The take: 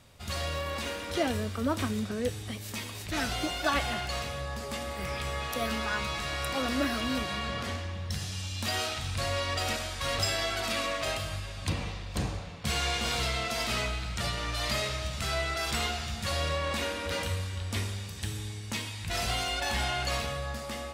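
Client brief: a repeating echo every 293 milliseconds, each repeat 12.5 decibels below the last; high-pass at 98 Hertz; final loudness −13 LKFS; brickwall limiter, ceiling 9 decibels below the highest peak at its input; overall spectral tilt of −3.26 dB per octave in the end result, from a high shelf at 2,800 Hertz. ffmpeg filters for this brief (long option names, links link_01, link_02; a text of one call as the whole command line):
ffmpeg -i in.wav -af "highpass=98,highshelf=frequency=2800:gain=8,alimiter=limit=-18.5dB:level=0:latency=1,aecho=1:1:293|586|879:0.237|0.0569|0.0137,volume=16.5dB" out.wav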